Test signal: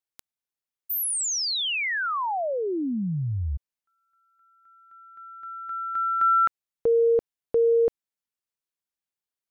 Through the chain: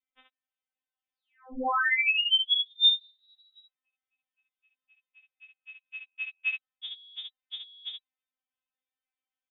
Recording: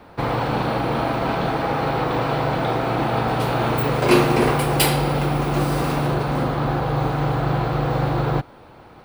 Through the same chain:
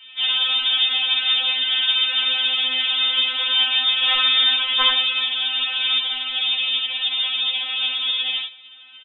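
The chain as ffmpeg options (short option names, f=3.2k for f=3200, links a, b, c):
-filter_complex "[0:a]highpass=f=160:p=1,asplit=2[a][b];[b]aecho=0:1:25|67:0.501|0.596[c];[a][c]amix=inputs=2:normalize=0,lowpass=f=3.3k:t=q:w=0.5098,lowpass=f=3.3k:t=q:w=0.6013,lowpass=f=3.3k:t=q:w=0.9,lowpass=f=3.3k:t=q:w=2.563,afreqshift=-3900,afftfilt=real='re*3.46*eq(mod(b,12),0)':imag='im*3.46*eq(mod(b,12),0)':win_size=2048:overlap=0.75,volume=2dB"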